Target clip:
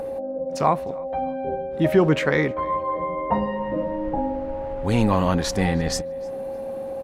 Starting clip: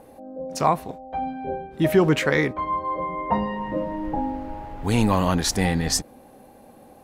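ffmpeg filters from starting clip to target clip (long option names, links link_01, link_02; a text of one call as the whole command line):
ffmpeg -i in.wav -filter_complex "[0:a]aemphasis=mode=reproduction:type=cd,acompressor=mode=upward:threshold=-29dB:ratio=2.5,aeval=exprs='val(0)+0.0398*sin(2*PI*540*n/s)':channel_layout=same,asplit=2[link_01][link_02];[link_02]adelay=307,lowpass=frequency=3800:poles=1,volume=-23dB,asplit=2[link_03][link_04];[link_04]adelay=307,lowpass=frequency=3800:poles=1,volume=0.35[link_05];[link_03][link_05]amix=inputs=2:normalize=0[link_06];[link_01][link_06]amix=inputs=2:normalize=0" out.wav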